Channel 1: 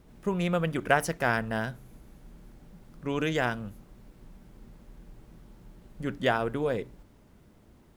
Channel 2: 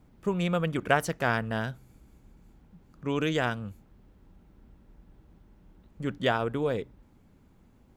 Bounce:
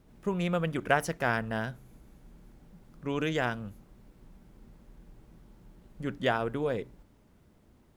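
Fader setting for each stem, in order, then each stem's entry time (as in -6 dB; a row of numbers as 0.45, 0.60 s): -4.5, -13.5 dB; 0.00, 0.00 s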